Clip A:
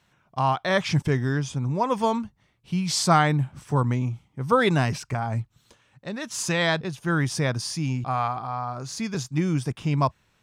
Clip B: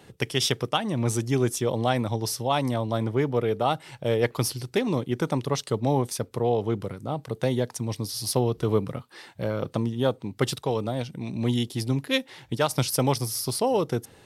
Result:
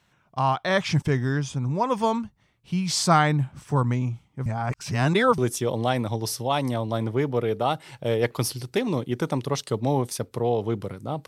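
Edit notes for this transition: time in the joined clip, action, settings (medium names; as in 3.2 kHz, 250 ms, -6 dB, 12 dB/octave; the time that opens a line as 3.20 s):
clip A
4.46–5.38 s: reverse
5.38 s: go over to clip B from 1.38 s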